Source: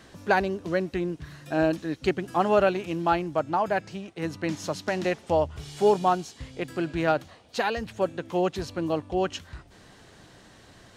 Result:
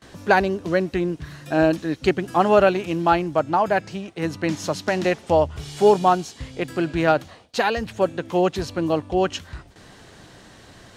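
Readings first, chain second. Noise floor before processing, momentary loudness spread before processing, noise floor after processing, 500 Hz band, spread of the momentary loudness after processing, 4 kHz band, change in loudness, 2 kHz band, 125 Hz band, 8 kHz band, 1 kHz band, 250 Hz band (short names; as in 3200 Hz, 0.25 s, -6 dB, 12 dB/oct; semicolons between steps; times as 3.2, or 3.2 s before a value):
-53 dBFS, 11 LU, -48 dBFS, +5.5 dB, 11 LU, +5.5 dB, +5.5 dB, +5.5 dB, +5.5 dB, +5.5 dB, +5.5 dB, +5.5 dB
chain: gate with hold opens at -43 dBFS; gain +5.5 dB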